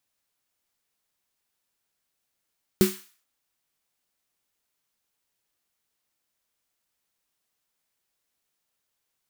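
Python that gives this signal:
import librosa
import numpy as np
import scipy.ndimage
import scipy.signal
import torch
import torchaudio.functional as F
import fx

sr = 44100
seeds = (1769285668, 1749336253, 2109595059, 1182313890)

y = fx.drum_snare(sr, seeds[0], length_s=0.43, hz=200.0, second_hz=370.0, noise_db=-10.5, noise_from_hz=1100.0, decay_s=0.23, noise_decay_s=0.46)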